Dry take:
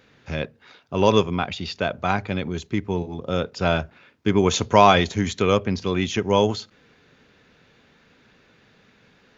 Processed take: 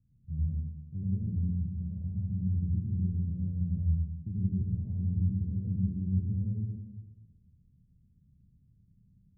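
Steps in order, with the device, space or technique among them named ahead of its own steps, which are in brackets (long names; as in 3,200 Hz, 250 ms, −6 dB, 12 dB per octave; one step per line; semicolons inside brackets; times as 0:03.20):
club heard from the street (brickwall limiter −13 dBFS, peak gain reduction 10.5 dB; low-pass filter 150 Hz 24 dB per octave; convolution reverb RT60 1.2 s, pre-delay 82 ms, DRR −5 dB)
level −3.5 dB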